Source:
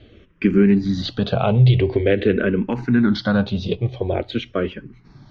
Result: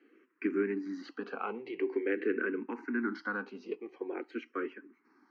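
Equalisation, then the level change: steep high-pass 270 Hz 48 dB/oct; high shelf 4000 Hz -12 dB; fixed phaser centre 1500 Hz, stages 4; -6.5 dB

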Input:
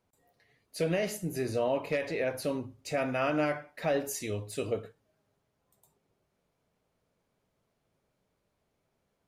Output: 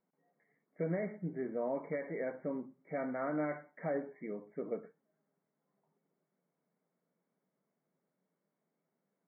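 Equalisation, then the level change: brick-wall FIR band-pass 150–2300 Hz; low shelf 210 Hz +11 dB; -8.5 dB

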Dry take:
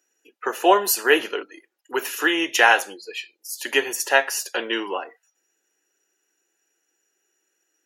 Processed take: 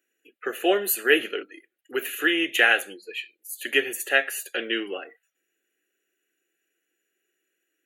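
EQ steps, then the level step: fixed phaser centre 2300 Hz, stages 4; 0.0 dB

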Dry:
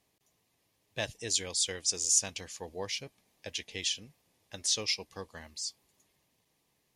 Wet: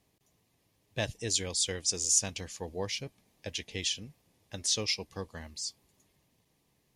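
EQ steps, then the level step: low shelf 340 Hz +8 dB; 0.0 dB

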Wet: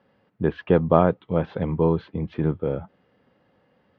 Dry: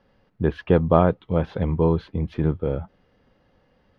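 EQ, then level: BPF 120–3700 Hz; 0.0 dB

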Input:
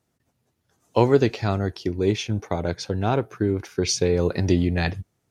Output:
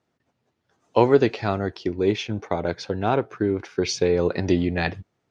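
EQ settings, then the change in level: air absorption 96 m; low shelf 150 Hz -12 dB; high shelf 8100 Hz -7.5 dB; +3.0 dB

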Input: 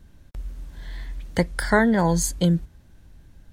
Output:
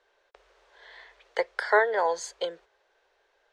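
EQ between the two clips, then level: elliptic high-pass 420 Hz, stop band 40 dB; air absorption 150 m; 0.0 dB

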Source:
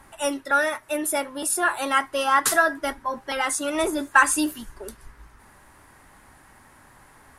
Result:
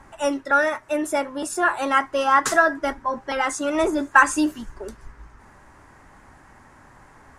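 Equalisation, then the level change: air absorption 210 m; resonant high shelf 5400 Hz +12 dB, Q 1.5; +4.0 dB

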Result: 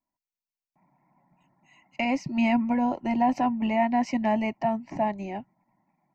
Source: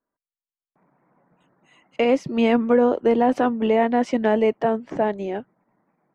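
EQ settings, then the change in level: Butterworth band-stop 1200 Hz, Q 4.6; fixed phaser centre 2300 Hz, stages 8; 0.0 dB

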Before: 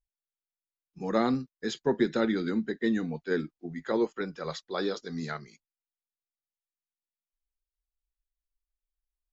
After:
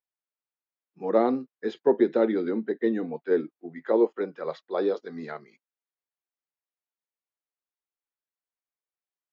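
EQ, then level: dynamic EQ 480 Hz, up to +6 dB, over -37 dBFS, Q 0.72; dynamic EQ 1500 Hz, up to -7 dB, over -44 dBFS, Q 1.5; BPF 310–2100 Hz; +2.5 dB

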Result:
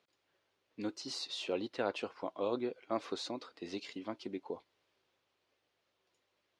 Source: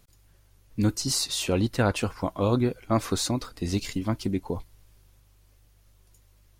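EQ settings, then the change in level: Chebyshev band-pass 390–3600 Hz, order 2; dynamic EQ 1600 Hz, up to -4 dB, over -43 dBFS, Q 0.95; -7.5 dB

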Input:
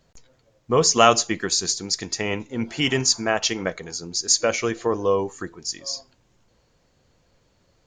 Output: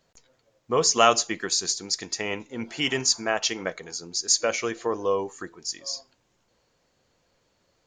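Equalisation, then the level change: low shelf 190 Hz -10.5 dB; -2.5 dB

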